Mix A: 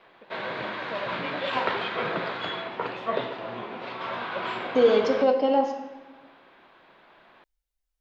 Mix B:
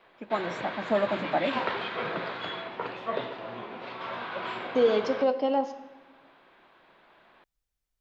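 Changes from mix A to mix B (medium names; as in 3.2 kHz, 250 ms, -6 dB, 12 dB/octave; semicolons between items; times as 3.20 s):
first voice: remove cascade formant filter e; second voice: send -8.5 dB; background -3.5 dB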